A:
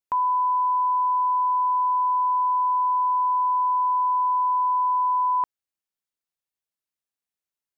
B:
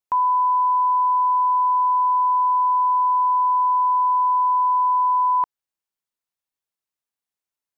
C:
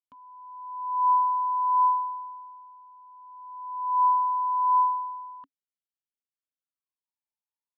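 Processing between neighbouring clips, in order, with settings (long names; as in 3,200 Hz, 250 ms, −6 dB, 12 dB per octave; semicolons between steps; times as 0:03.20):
parametric band 960 Hz +3.5 dB 0.77 octaves
phaser with its sweep stopped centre 840 Hz, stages 4; formant filter swept between two vowels i-u 0.34 Hz; level +5.5 dB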